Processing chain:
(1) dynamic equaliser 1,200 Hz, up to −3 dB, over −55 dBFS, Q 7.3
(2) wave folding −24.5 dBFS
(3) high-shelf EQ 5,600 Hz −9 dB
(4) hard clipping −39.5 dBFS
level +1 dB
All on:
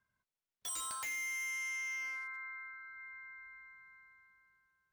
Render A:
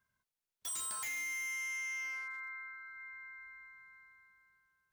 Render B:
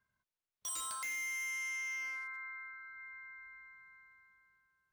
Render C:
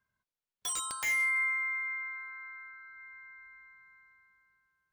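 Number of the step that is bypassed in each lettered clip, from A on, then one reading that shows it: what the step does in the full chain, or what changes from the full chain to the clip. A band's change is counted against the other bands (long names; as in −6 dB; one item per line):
3, 1 kHz band −2.5 dB
2, distortion level −5 dB
4, distortion level −6 dB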